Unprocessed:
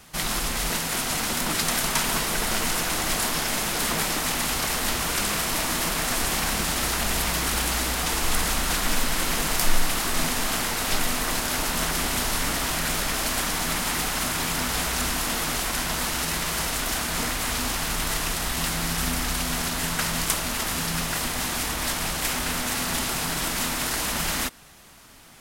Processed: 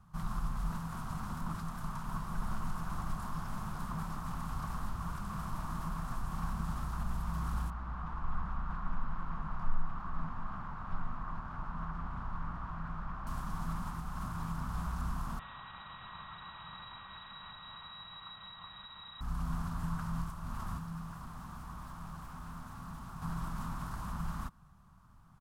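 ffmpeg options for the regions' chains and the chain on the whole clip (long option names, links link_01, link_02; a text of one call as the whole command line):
ffmpeg -i in.wav -filter_complex "[0:a]asettb=1/sr,asplit=3[link_01][link_02][link_03];[link_01]atrim=end=7.704[link_04];[link_02]atrim=start=7.7:end=13.27,asetpts=PTS-STARTPTS,afade=type=in:duration=0.004:curve=qsin,afade=type=out:start_time=5.566:duration=0.004:curve=qsin,lowpass=1600,tiltshelf=frequency=1200:gain=-5[link_05];[link_03]atrim=start=13.266[link_06];[link_04][link_05]acrossfade=duration=0.004:curve1=hsin:curve2=qsin[link_07];[link_07][link_06]acrossfade=duration=0.004:curve1=qsin:curve2=hsin,asettb=1/sr,asplit=3[link_08][link_09][link_10];[link_08]atrim=end=15.394[link_11];[link_09]atrim=start=15.39:end=19.21,asetpts=PTS-STARTPTS,afade=type=in:duration=0.004:curve=qsin,afade=type=out:start_time=3.816:duration=0.004:curve=qsin,asubboost=boost=7:cutoff=110,lowpass=frequency=3300:width_type=q:width=0.5098,lowpass=frequency=3300:width_type=q:width=0.6013,lowpass=frequency=3300:width_type=q:width=0.9,lowpass=frequency=3300:width_type=q:width=2.563,afreqshift=-3900,aeval=exprs='val(0)+0.0316*sin(2*PI*1900*n/s)':channel_layout=same[link_12];[link_10]atrim=start=19.206[link_13];[link_11][link_12]acrossfade=duration=0.004:curve1=hsin:curve2=qsin[link_14];[link_14][link_13]acrossfade=duration=0.004:curve1=qsin:curve2=hsin,asettb=1/sr,asplit=3[link_15][link_16][link_17];[link_15]atrim=end=20.774[link_18];[link_16]atrim=start=20.77:end=23.22,asetpts=PTS-STARTPTS,afade=type=in:duration=0.004:curve=qsin,afade=type=out:start_time=2.446:duration=0.004:curve=qsin,asoftclip=type=hard:threshold=-24.5dB,acrossover=split=150|2700[link_19][link_20][link_21];[link_19]acompressor=threshold=-44dB:ratio=4[link_22];[link_20]acompressor=threshold=-34dB:ratio=4[link_23];[link_21]acompressor=threshold=-33dB:ratio=4[link_24];[link_22][link_23][link_24]amix=inputs=3:normalize=0[link_25];[link_17]atrim=start=23.216[link_26];[link_18][link_25]acrossfade=duration=0.004:curve1=hsin:curve2=qsin[link_27];[link_27][link_26]acrossfade=duration=0.004:curve1=qsin:curve2=hsin,alimiter=limit=-14.5dB:level=0:latency=1:release=265,firequalizer=gain_entry='entry(180,0);entry(260,-15);entry(450,-23);entry(1100,-4);entry(2000,-27)':delay=0.05:min_phase=1,volume=-2.5dB" out.wav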